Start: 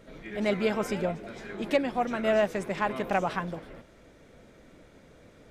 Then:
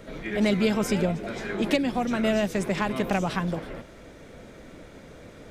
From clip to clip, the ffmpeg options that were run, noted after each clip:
-filter_complex "[0:a]acrossover=split=290|3000[s0][s1][s2];[s1]acompressor=threshold=0.0178:ratio=6[s3];[s0][s3][s2]amix=inputs=3:normalize=0,volume=2.66"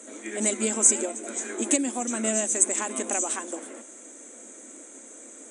-af "aexciter=amount=12.8:drive=6.9:freq=7100,afftfilt=real='re*between(b*sr/4096,210,10000)':imag='im*between(b*sr/4096,210,10000)':win_size=4096:overlap=0.75,superequalizer=6b=1.58:15b=3.16,volume=0.596"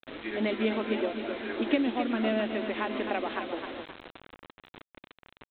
-af "aecho=1:1:262|524|786|1048|1310:0.398|0.167|0.0702|0.0295|0.0124,aresample=8000,acrusher=bits=6:mix=0:aa=0.000001,aresample=44100"

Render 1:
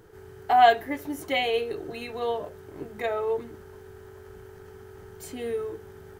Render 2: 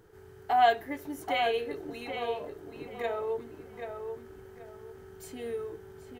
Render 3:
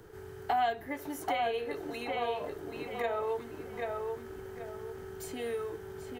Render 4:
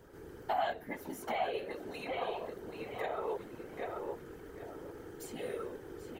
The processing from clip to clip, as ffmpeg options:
-filter_complex "[0:a]asplit=2[s0][s1];[s1]adelay=781,lowpass=f=2700:p=1,volume=0.501,asplit=2[s2][s3];[s3]adelay=781,lowpass=f=2700:p=1,volume=0.28,asplit=2[s4][s5];[s5]adelay=781,lowpass=f=2700:p=1,volume=0.28,asplit=2[s6][s7];[s7]adelay=781,lowpass=f=2700:p=1,volume=0.28[s8];[s0][s2][s4][s6][s8]amix=inputs=5:normalize=0,volume=0.531"
-filter_complex "[0:a]acrossover=split=270|590|1400[s0][s1][s2][s3];[s0]acompressor=threshold=0.002:ratio=4[s4];[s1]acompressor=threshold=0.00398:ratio=4[s5];[s2]acompressor=threshold=0.0112:ratio=4[s6];[s3]acompressor=threshold=0.00355:ratio=4[s7];[s4][s5][s6][s7]amix=inputs=4:normalize=0,volume=2"
-af "afftfilt=real='hypot(re,im)*cos(2*PI*random(0))':imag='hypot(re,im)*sin(2*PI*random(1))':win_size=512:overlap=0.75,volume=1.26"

